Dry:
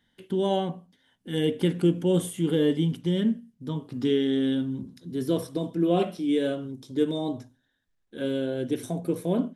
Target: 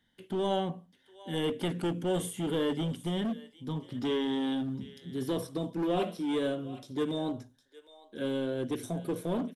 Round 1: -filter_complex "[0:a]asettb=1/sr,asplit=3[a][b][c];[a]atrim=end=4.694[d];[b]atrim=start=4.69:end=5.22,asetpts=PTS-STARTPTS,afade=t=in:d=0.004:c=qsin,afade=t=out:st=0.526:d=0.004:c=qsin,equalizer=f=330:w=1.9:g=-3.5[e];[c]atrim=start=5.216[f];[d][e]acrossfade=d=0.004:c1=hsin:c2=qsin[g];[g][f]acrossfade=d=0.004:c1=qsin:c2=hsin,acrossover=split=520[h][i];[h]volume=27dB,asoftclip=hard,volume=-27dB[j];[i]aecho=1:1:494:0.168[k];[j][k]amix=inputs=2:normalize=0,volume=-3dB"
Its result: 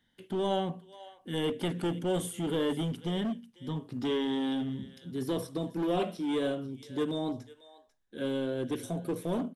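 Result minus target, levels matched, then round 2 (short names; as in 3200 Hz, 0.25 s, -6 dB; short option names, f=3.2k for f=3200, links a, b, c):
echo 0.264 s early
-filter_complex "[0:a]asettb=1/sr,asplit=3[a][b][c];[a]atrim=end=4.694[d];[b]atrim=start=4.69:end=5.22,asetpts=PTS-STARTPTS,afade=t=in:d=0.004:c=qsin,afade=t=out:st=0.526:d=0.004:c=qsin,equalizer=f=330:w=1.9:g=-3.5[e];[c]atrim=start=5.216[f];[d][e]acrossfade=d=0.004:c1=hsin:c2=qsin[g];[g][f]acrossfade=d=0.004:c1=qsin:c2=hsin,acrossover=split=520[h][i];[h]volume=27dB,asoftclip=hard,volume=-27dB[j];[i]aecho=1:1:758:0.168[k];[j][k]amix=inputs=2:normalize=0,volume=-3dB"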